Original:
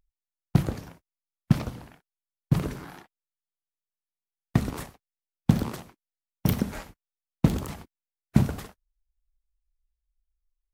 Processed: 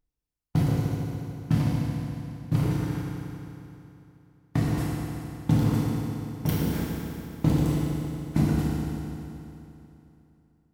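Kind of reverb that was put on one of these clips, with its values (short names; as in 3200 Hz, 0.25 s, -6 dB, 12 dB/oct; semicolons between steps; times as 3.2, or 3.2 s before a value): FDN reverb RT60 3 s, high-frequency decay 0.85×, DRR -6.5 dB; gain -6 dB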